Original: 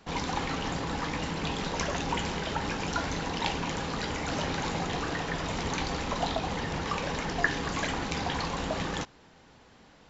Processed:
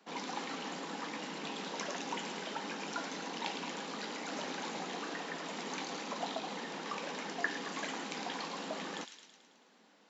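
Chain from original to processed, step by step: steep high-pass 190 Hz 48 dB/oct; on a send: thin delay 0.109 s, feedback 58%, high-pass 2800 Hz, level -4.5 dB; on the sum: gain -8 dB

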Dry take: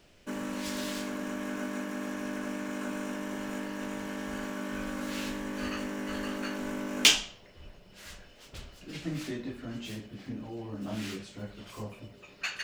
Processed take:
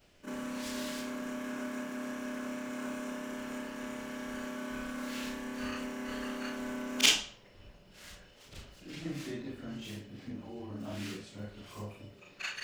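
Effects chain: short-time reversal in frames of 96 ms

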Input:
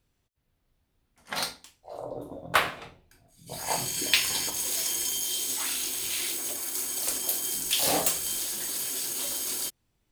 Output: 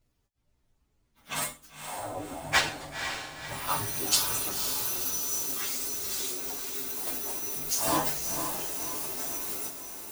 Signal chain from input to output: inharmonic rescaling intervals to 125%; diffused feedback echo 0.512 s, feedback 53%, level -7.5 dB; gain +4.5 dB

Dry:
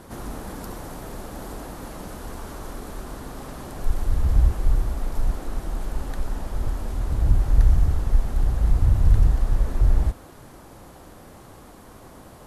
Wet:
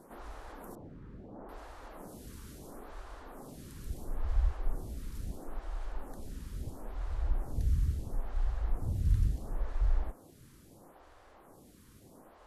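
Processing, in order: 0.75–1.49 LPF 1300 Hz 12 dB/oct; photocell phaser 0.74 Hz; gain -8.5 dB

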